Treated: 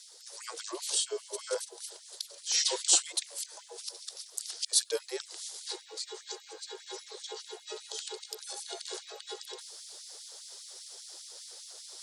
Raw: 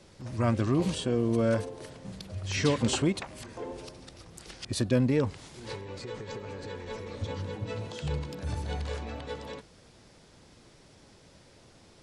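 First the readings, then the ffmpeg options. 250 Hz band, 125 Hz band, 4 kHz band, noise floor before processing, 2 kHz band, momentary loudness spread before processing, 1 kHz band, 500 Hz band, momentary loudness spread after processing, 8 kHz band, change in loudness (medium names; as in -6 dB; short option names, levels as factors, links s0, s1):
-22.5 dB, under -40 dB, +6.0 dB, -57 dBFS, -6.5 dB, 17 LU, -7.5 dB, -8.5 dB, 17 LU, +11.5 dB, -2.5 dB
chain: -af "afreqshift=-57,areverse,acompressor=mode=upward:threshold=0.00891:ratio=2.5,areverse,tiltshelf=f=660:g=3,aexciter=amount=9:drive=1.4:freq=3500,afftfilt=real='re*gte(b*sr/1024,330*pow(2100/330,0.5+0.5*sin(2*PI*5*pts/sr)))':imag='im*gte(b*sr/1024,330*pow(2100/330,0.5+0.5*sin(2*PI*5*pts/sr)))':win_size=1024:overlap=0.75,volume=0.668"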